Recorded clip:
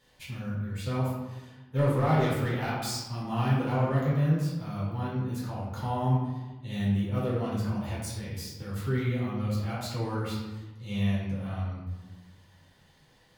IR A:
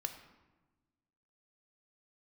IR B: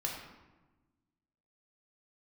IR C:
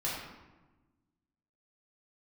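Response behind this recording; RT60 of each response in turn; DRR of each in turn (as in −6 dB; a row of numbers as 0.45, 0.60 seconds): C; 1.2, 1.2, 1.2 seconds; 6.5, −2.0, −8.0 decibels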